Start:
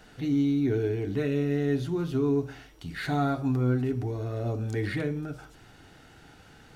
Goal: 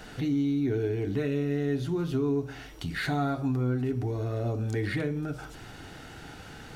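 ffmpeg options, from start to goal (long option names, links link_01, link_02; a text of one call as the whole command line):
ffmpeg -i in.wav -af "acompressor=threshold=-41dB:ratio=2,volume=8dB" out.wav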